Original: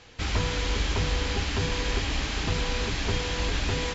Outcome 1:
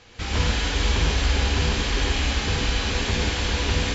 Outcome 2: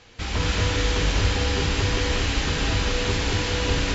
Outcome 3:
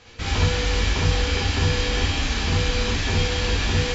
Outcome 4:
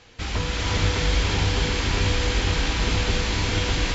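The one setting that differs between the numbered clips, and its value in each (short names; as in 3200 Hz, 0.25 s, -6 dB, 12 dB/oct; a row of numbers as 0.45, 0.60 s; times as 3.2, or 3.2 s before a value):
non-linear reverb, gate: 180, 270, 90, 500 ms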